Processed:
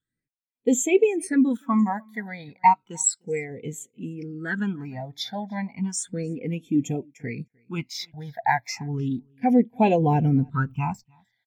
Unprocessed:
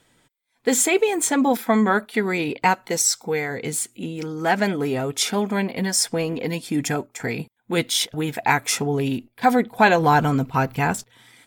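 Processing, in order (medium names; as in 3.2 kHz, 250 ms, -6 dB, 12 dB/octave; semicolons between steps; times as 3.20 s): phase shifter stages 8, 0.33 Hz, lowest notch 350–1500 Hz; 1.79–2.28 s: resonant high shelf 5.5 kHz +8 dB, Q 3; on a send: delay 303 ms -21 dB; on the sum: spectral contrast expander 1.5:1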